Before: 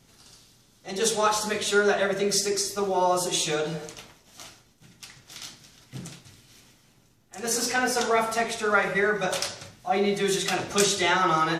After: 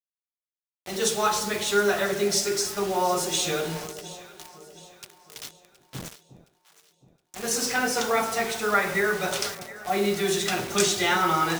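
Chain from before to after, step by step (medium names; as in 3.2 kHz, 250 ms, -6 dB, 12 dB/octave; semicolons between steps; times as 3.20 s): dynamic bell 610 Hz, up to -3 dB, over -35 dBFS, Q 2.3; word length cut 6-bit, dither none; on a send: echo whose repeats swap between lows and highs 359 ms, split 810 Hz, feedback 65%, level -13 dB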